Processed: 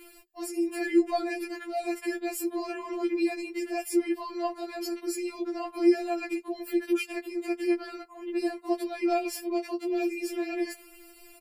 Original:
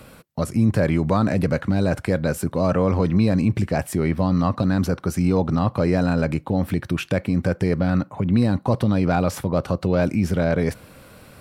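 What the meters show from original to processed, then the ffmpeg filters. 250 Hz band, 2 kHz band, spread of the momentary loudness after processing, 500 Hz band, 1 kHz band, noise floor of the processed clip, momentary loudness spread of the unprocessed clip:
-8.0 dB, -6.5 dB, 9 LU, -6.5 dB, -7.0 dB, -53 dBFS, 4 LU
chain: -af "highshelf=f=8.1k:g=6.5,aecho=1:1:5.4:0.73,afftfilt=real='re*4*eq(mod(b,16),0)':imag='im*4*eq(mod(b,16),0)':win_size=2048:overlap=0.75,volume=-4.5dB"

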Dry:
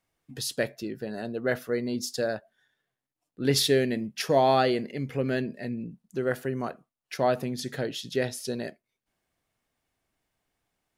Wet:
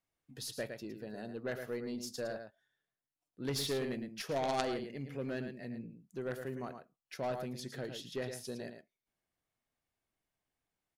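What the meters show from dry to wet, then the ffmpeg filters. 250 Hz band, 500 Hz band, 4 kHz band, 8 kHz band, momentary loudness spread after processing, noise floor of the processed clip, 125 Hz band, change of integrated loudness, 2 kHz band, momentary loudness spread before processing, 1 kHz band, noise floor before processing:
-11.0 dB, -11.5 dB, -11.0 dB, -10.5 dB, 12 LU, under -85 dBFS, -11.0 dB, -11.5 dB, -11.0 dB, 13 LU, -12.0 dB, under -85 dBFS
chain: -filter_complex "[0:a]asplit=2[a][b];[b]adelay=110.8,volume=-8dB,highshelf=f=4k:g=-2.49[c];[a][c]amix=inputs=2:normalize=0,aeval=exprs='0.376*(cos(1*acos(clip(val(0)/0.376,-1,1)))-cos(1*PI/2))+0.168*(cos(3*acos(clip(val(0)/0.376,-1,1)))-cos(3*PI/2))+0.0668*(cos(5*acos(clip(val(0)/0.376,-1,1)))-cos(5*PI/2))+0.00376*(cos(8*acos(clip(val(0)/0.376,-1,1)))-cos(8*PI/2))':c=same,volume=-5dB"

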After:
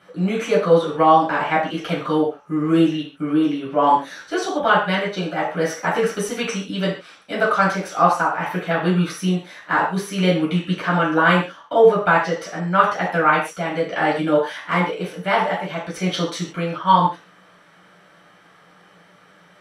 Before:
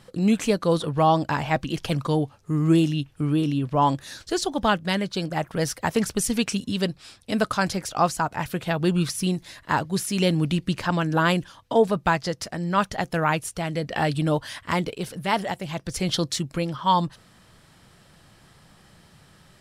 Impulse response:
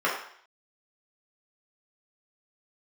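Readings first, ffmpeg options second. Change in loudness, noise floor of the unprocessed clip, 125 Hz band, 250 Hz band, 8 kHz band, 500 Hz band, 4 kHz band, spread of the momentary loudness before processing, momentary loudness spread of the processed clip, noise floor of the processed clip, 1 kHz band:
+4.5 dB, -56 dBFS, 0.0 dB, +2.5 dB, -3.5 dB, +6.5 dB, +1.0 dB, 7 LU, 9 LU, -52 dBFS, +6.5 dB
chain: -filter_complex "[1:a]atrim=start_sample=2205,afade=t=out:st=0.22:d=0.01,atrim=end_sample=10143,asetrate=48510,aresample=44100[a];[0:a][a]afir=irnorm=-1:irlink=0,volume=-7dB"

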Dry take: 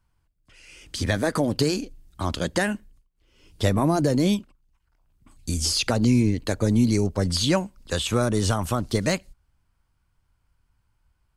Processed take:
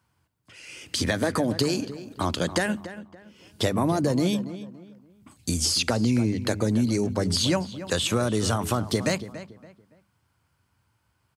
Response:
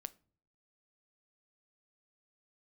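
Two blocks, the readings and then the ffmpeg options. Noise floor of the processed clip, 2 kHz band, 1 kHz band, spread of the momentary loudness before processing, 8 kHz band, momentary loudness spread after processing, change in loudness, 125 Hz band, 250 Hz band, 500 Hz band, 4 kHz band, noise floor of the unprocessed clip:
-72 dBFS, -0.5 dB, -1.0 dB, 10 LU, +0.5 dB, 13 LU, -1.5 dB, -3.0 dB, -2.0 dB, -1.0 dB, +0.5 dB, -71 dBFS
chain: -filter_complex "[0:a]highpass=f=90:w=0.5412,highpass=f=90:w=1.3066,bandreject=f=50:t=h:w=6,bandreject=f=100:t=h:w=6,bandreject=f=150:t=h:w=6,bandreject=f=200:t=h:w=6,acompressor=threshold=-29dB:ratio=2.5,asplit=2[a][b];[b]adelay=283,lowpass=f=2.5k:p=1,volume=-13dB,asplit=2[c][d];[d]adelay=283,lowpass=f=2.5k:p=1,volume=0.32,asplit=2[e][f];[f]adelay=283,lowpass=f=2.5k:p=1,volume=0.32[g];[c][e][g]amix=inputs=3:normalize=0[h];[a][h]amix=inputs=2:normalize=0,volume=5.5dB"

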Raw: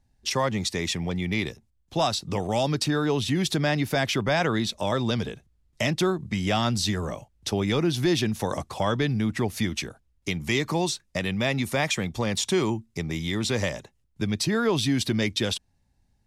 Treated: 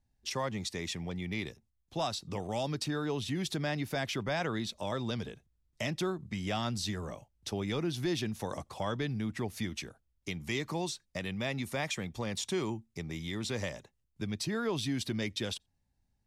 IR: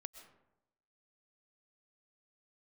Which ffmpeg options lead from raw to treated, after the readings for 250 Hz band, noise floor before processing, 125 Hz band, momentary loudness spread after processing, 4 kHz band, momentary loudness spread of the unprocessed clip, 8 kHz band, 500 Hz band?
-9.5 dB, -68 dBFS, -9.5 dB, 7 LU, -9.5 dB, 7 LU, -9.5 dB, -9.5 dB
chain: -filter_complex "[1:a]atrim=start_sample=2205,atrim=end_sample=3969[a];[0:a][a]afir=irnorm=-1:irlink=0,volume=-4dB"

